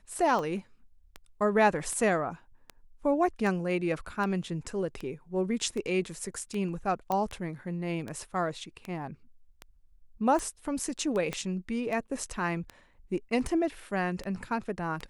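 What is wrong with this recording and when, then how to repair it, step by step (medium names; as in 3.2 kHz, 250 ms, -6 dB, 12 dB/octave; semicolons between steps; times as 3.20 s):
tick 78 rpm -23 dBFS
7.12 s: pop -17 dBFS
11.33 s: pop -18 dBFS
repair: de-click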